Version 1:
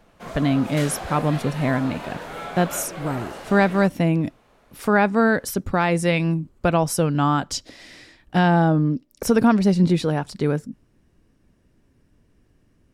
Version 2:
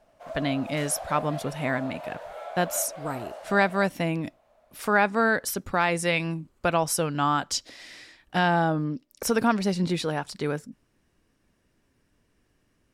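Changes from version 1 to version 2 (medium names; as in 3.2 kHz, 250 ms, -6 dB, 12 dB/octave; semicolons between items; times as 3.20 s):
speech: add bass shelf 480 Hz -10.5 dB; background: add ladder high-pass 580 Hz, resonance 75%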